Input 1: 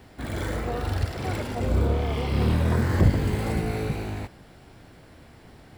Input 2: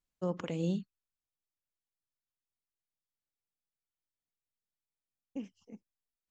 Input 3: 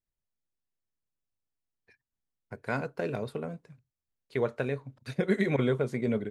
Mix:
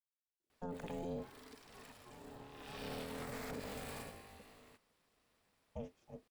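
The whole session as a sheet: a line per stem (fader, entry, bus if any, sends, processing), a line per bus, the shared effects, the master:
2.50 s -22 dB -> 2.87 s -10.5 dB -> 3.89 s -10.5 dB -> 4.25 s -22.5 dB, 0.50 s, no send, tilt EQ +2.5 dB/octave
-3.0 dB, 0.40 s, no send, octave divider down 1 oct, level +3 dB
mute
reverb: none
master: ring modulator 350 Hz; peak limiter -34 dBFS, peak gain reduction 10 dB

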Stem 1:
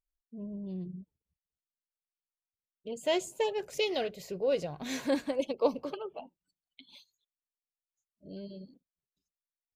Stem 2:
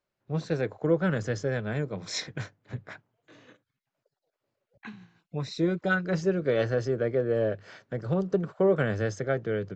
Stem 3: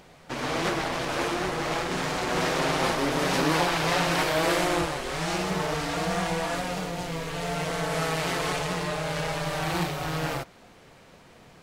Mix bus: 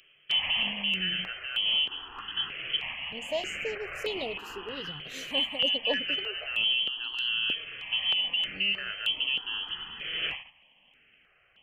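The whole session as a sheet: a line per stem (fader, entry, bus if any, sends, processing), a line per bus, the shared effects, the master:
-2.0 dB, 0.25 s, no bus, no send, none
-0.5 dB, 0.00 s, bus A, no send, bass shelf 240 Hz +9 dB
+2.5 dB, 0.00 s, bus A, no send, endings held to a fixed fall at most 140 dB/s; auto duck -13 dB, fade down 1.40 s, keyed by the second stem
bus A: 0.0 dB, frequency inversion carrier 3.2 kHz; peak limiter -17 dBFS, peak gain reduction 7.5 dB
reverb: none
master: gate -46 dBFS, range -9 dB; stepped phaser 3.2 Hz 240–5600 Hz

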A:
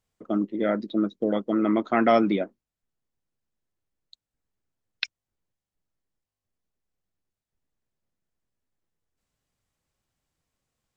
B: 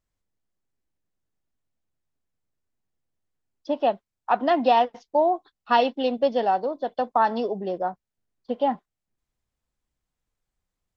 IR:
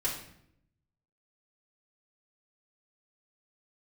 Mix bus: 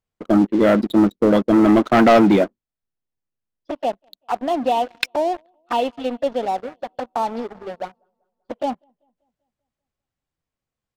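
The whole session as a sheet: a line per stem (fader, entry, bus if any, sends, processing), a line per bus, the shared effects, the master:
+1.5 dB, 0.00 s, no send, no echo send, none
-9.5 dB, 0.00 s, no send, echo send -21 dB, touch-sensitive flanger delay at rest 11.4 ms, full sweep at -19 dBFS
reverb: none
echo: feedback delay 194 ms, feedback 52%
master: treble shelf 5.1 kHz -9 dB; waveshaping leveller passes 3

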